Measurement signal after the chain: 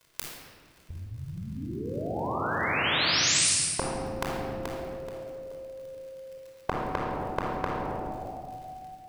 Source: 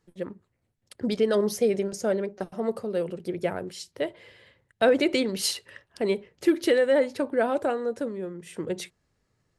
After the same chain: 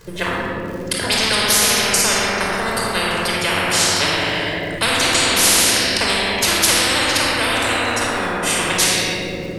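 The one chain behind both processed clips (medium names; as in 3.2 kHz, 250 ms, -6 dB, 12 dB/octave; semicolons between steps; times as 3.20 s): crackle 61 per s -57 dBFS; simulated room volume 2900 m³, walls mixed, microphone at 5.1 m; spectrum-flattening compressor 10:1; trim -1 dB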